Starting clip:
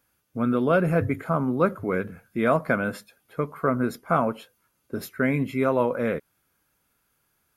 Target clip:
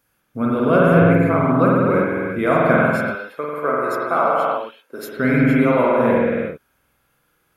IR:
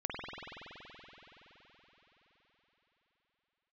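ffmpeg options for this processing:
-filter_complex "[0:a]asettb=1/sr,asplit=3[a][b][c];[a]atrim=end=2.774[d];[b]atrim=start=2.77:end=5.1,asetpts=PTS-STARTPTS,afade=t=in:d=0.004:c=qsin,afade=t=out:st=2.326:d=0.004:c=qsin,highpass=430[e];[c]atrim=start=5.096[f];[d][e]acrossfade=d=0.004:c1=hsin:c2=qsin[g];[g][f]acrossfade=d=0.004:c1=qsin:c2=hsin[h];[1:a]atrim=start_sample=2205,afade=t=out:st=0.44:d=0.01,atrim=end_sample=19845[i];[h][i]afir=irnorm=-1:irlink=0,volume=4.5dB"

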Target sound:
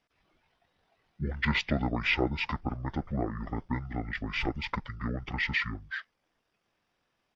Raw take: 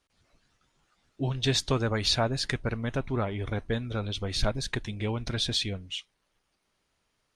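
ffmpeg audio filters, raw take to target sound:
-af "lowshelf=f=140:g=-9,asetrate=24046,aresample=44100,atempo=1.83401"

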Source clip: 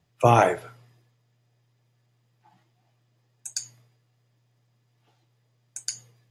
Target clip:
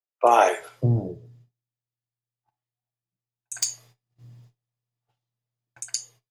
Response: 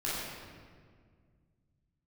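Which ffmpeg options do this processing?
-filter_complex "[0:a]acrossover=split=340|2000[a][b][c];[c]adelay=60[d];[a]adelay=590[e];[e][b][d]amix=inputs=3:normalize=0,asplit=3[f][g][h];[f]afade=t=out:st=3.54:d=0.02[i];[g]aeval=exprs='0.224*(cos(1*acos(clip(val(0)/0.224,-1,1)))-cos(1*PI/2))+0.0112*(cos(3*acos(clip(val(0)/0.224,-1,1)))-cos(3*PI/2))+0.0631*(cos(5*acos(clip(val(0)/0.224,-1,1)))-cos(5*PI/2))':c=same,afade=t=in:st=3.54:d=0.02,afade=t=out:st=5.8:d=0.02[j];[h]afade=t=in:st=5.8:d=0.02[k];[i][j][k]amix=inputs=3:normalize=0,agate=range=-29dB:threshold=-55dB:ratio=16:detection=peak,asplit=2[l][m];[1:a]atrim=start_sample=2205,atrim=end_sample=3528[n];[m][n]afir=irnorm=-1:irlink=0,volume=-22dB[o];[l][o]amix=inputs=2:normalize=0,volume=2dB"

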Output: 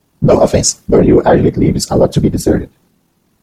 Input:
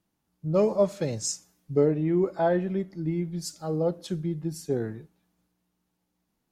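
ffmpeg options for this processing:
-af "afftfilt=real='hypot(re,im)*cos(2*PI*random(0))':imag='hypot(re,im)*sin(2*PI*random(1))':win_size=512:overlap=0.75,atempo=1.9,apsyclip=27.5dB,volume=-1.5dB"

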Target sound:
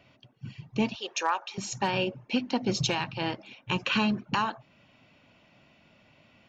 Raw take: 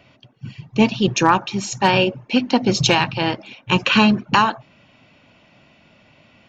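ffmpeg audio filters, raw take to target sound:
-filter_complex "[0:a]asettb=1/sr,asplit=3[a][b][c];[a]atrim=end=0.954[d];[b]atrim=start=0.95:end=1.58,asetpts=PTS-STARTPTS,afade=t=in:d=0.004:c=qsin,afade=t=out:st=0.626:d=0.004:c=qsin,highpass=f=500:w=0.5412,highpass=f=500:w=1.3066[e];[c]atrim=start=1.576[f];[d][e]acrossfade=d=0.004:c1=hsin:c2=qsin[g];[g][f]acrossfade=d=0.004:c1=qsin:c2=hsin,alimiter=limit=-8dB:level=0:latency=1:release=471,volume=-7.5dB"

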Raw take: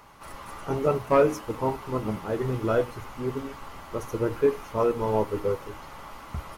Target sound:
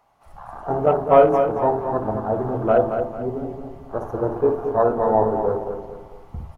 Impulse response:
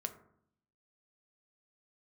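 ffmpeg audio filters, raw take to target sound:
-filter_complex "[0:a]asplit=2[a][b];[b]lowshelf=f=450:g=10.5[c];[1:a]atrim=start_sample=2205,adelay=58[d];[c][d]afir=irnorm=-1:irlink=0,volume=-12dB[e];[a][e]amix=inputs=2:normalize=0,afwtdn=0.02,equalizer=f=720:t=o:w=0.49:g=15,asplit=2[f][g];[g]adelay=223,lowpass=f=4.4k:p=1,volume=-7dB,asplit=2[h][i];[i]adelay=223,lowpass=f=4.4k:p=1,volume=0.38,asplit=2[j][k];[k]adelay=223,lowpass=f=4.4k:p=1,volume=0.38,asplit=2[l][m];[m]adelay=223,lowpass=f=4.4k:p=1,volume=0.38[n];[f][h][j][l][n]amix=inputs=5:normalize=0,volume=1dB"

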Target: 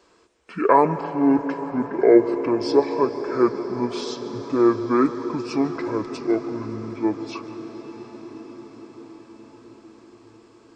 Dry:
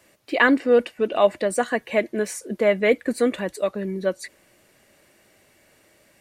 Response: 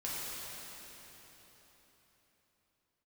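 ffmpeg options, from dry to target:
-filter_complex "[0:a]equalizer=f=250:t=o:w=0.67:g=-12,equalizer=f=1.6k:t=o:w=0.67:g=3,equalizer=f=4k:t=o:w=0.67:g=3,asplit=2[a][b];[1:a]atrim=start_sample=2205,asetrate=28665,aresample=44100,adelay=87[c];[b][c]afir=irnorm=-1:irlink=0,volume=-15.5dB[d];[a][d]amix=inputs=2:normalize=0,asetrate=25442,aresample=44100,equalizer=f=460:w=2.8:g=14.5,volume=-3dB"

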